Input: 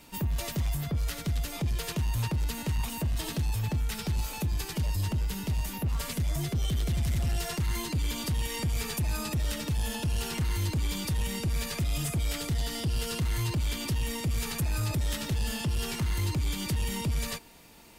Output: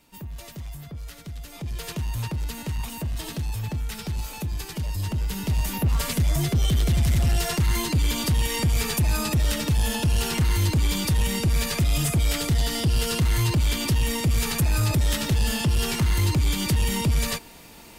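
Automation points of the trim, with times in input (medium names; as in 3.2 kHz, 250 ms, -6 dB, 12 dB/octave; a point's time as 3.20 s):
1.40 s -7 dB
1.86 s +0.5 dB
4.89 s +0.5 dB
5.74 s +7.5 dB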